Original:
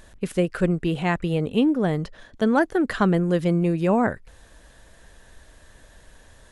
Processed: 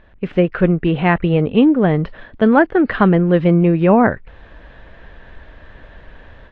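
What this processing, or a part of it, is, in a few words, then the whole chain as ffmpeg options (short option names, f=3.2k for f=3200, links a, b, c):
action camera in a waterproof case: -af "lowpass=f=2.9k:w=0.5412,lowpass=f=2.9k:w=1.3066,dynaudnorm=f=170:g=3:m=10.5dB" -ar 22050 -c:a aac -b:a 48k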